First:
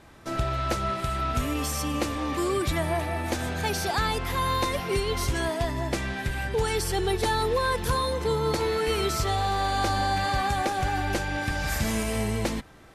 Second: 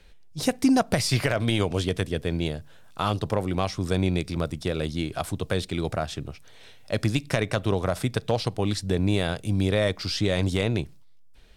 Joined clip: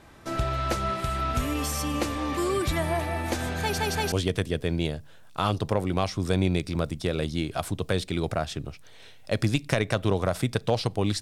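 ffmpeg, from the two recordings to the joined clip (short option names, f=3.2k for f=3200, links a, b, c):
-filter_complex "[0:a]apad=whole_dur=11.21,atrim=end=11.21,asplit=3[a][b][c];[a]atrim=end=3.782[d];[b]atrim=start=3.608:end=3.782[e];[c]atrim=start=3.608:end=3.782[f];[1:a]atrim=start=1.728:end=8.82[g];[d][e]acrossfade=d=0.004:c1=hsin:c2=hsin[h];[h][f]acrossfade=d=0.004:c1=hsin:c2=hsin[i];[i][g]acrossfade=d=0.004:c1=hsin:c2=hsin"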